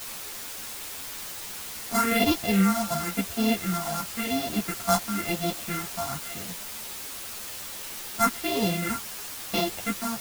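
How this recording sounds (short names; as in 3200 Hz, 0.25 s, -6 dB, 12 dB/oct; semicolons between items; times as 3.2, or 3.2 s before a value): a buzz of ramps at a fixed pitch in blocks of 64 samples; phasing stages 4, 0.96 Hz, lowest notch 380–1600 Hz; a quantiser's noise floor 6-bit, dither triangular; a shimmering, thickened sound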